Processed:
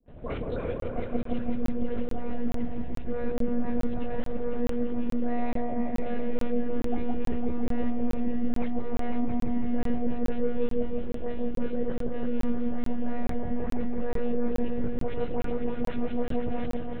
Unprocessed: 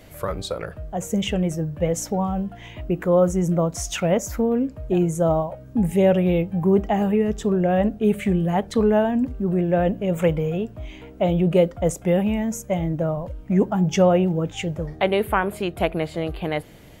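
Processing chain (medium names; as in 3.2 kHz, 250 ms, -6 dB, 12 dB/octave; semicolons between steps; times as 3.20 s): median filter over 41 samples; reverse; compression 12:1, threshold -29 dBFS, peak gain reduction 16.5 dB; reverse; phase dispersion highs, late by 94 ms, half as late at 1.3 kHz; gate with hold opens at -40 dBFS; monotone LPC vocoder at 8 kHz 240 Hz; on a send: delay with an opening low-pass 167 ms, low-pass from 750 Hz, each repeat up 1 oct, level 0 dB; on the sum: crackling interface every 0.43 s, samples 1024, zero, from 0.80 s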